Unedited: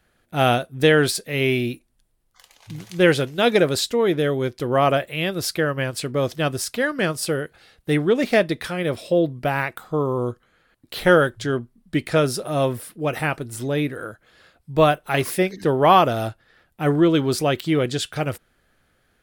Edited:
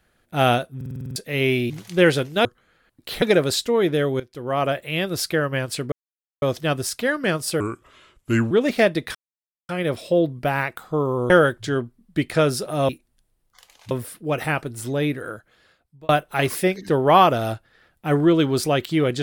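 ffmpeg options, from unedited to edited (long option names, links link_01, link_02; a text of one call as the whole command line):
ffmpeg -i in.wav -filter_complex "[0:a]asplit=21[link_01][link_02][link_03][link_04][link_05][link_06][link_07][link_08][link_09][link_10][link_11][link_12][link_13][link_14][link_15][link_16][link_17][link_18][link_19][link_20][link_21];[link_01]atrim=end=0.812[link_22];[link_02]atrim=start=0.758:end=0.812[link_23];[link_03]atrim=start=0.758:end=0.812[link_24];[link_04]atrim=start=0.758:end=0.812[link_25];[link_05]atrim=start=0.758:end=0.812[link_26];[link_06]atrim=start=0.758:end=0.812[link_27];[link_07]atrim=start=0.758:end=0.812[link_28];[link_08]atrim=start=0.758:end=0.812[link_29];[link_09]atrim=start=1.158:end=1.702[link_30];[link_10]atrim=start=2.718:end=3.472[link_31];[link_11]atrim=start=10.298:end=11.072[link_32];[link_12]atrim=start=3.468:end=4.45,asetpts=PTS-STARTPTS,afade=type=out:start_time=0.978:duration=0.004:curve=hsin:silence=0.149624[link_33];[link_13]atrim=start=4.45:end=6.17,asetpts=PTS-STARTPTS,afade=type=in:duration=0.75:silence=0.149624,afade=type=out:start_time=1.716:duration=0.004:curve=hsin,apad=pad_dur=0.5[link_34];[link_14]atrim=start=6.17:end=7.354,asetpts=PTS-STARTPTS,afade=type=in:duration=0.004:curve=hsin[link_35];[link_15]atrim=start=7.35:end=8.05,asetpts=PTS-STARTPTS,asetrate=33957,aresample=44100[link_36];[link_16]atrim=start=8.046:end=8.69,asetpts=PTS-STARTPTS,afade=type=out:start_time=0.64:duration=0.004:curve=hsin,apad=pad_dur=0.54[link_37];[link_17]atrim=start=8.69:end=10.302,asetpts=PTS-STARTPTS,afade=type=in:duration=0.004:curve=hsin[link_38];[link_18]atrim=start=11.068:end=12.662[link_39];[link_19]atrim=start=1.698:end=2.722[link_40];[link_20]atrim=start=12.658:end=14.84,asetpts=PTS-STARTPTS,afade=type=out:start_time=1.402:duration=0.78[link_41];[link_21]atrim=start=14.84,asetpts=PTS-STARTPTS,afade=type=in:duration=0.004:curve=hsin[link_42];[link_22][link_23]acrossfade=duration=0.004:curve1=hsin:curve2=hsin[link_43];[link_43][link_24]acrossfade=duration=0.004:curve1=hsin:curve2=hsin[link_44];[link_44][link_25]acrossfade=duration=0.004:curve1=hsin:curve2=hsin[link_45];[link_45][link_26]acrossfade=duration=0.004:curve1=hsin:curve2=hsin[link_46];[link_46][link_27]acrossfade=duration=0.004:curve1=hsin:curve2=hsin[link_47];[link_47][link_28]acrossfade=duration=0.004:curve1=hsin:curve2=hsin[link_48];[link_48][link_29]acrossfade=duration=0.004:curve1=hsin:curve2=hsin[link_49];[link_49][link_30]acrossfade=duration=0.004:curve1=hsin:curve2=hsin[link_50];[link_50][link_31]acrossfade=duration=0.004:curve1=hsin:curve2=hsin[link_51];[link_51][link_32]acrossfade=duration=0.004:curve1=hsin:curve2=hsin[link_52];[link_33][link_34][link_35]concat=n=3:v=0:a=1[link_53];[link_52][link_53]acrossfade=duration=0.004:curve1=hsin:curve2=hsin[link_54];[link_54][link_36]acrossfade=duration=0.004:curve1=hsin:curve2=hsin[link_55];[link_37][link_38]concat=n=2:v=0:a=1[link_56];[link_55][link_56]acrossfade=duration=0.004:curve1=hsin:curve2=hsin[link_57];[link_57][link_39]acrossfade=duration=0.004:curve1=hsin:curve2=hsin[link_58];[link_58][link_40]acrossfade=duration=0.004:curve1=hsin:curve2=hsin[link_59];[link_41][link_42]concat=n=2:v=0:a=1[link_60];[link_59][link_60]acrossfade=duration=0.004:curve1=hsin:curve2=hsin" out.wav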